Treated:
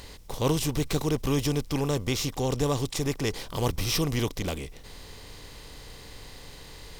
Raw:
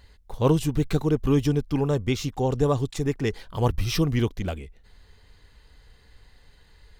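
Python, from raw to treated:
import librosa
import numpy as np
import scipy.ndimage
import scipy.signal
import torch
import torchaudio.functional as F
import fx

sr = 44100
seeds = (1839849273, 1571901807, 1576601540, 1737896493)

y = fx.bin_compress(x, sr, power=0.6)
y = fx.high_shelf(y, sr, hz=3100.0, db=11.0)
y = y * 10.0 ** (-7.0 / 20.0)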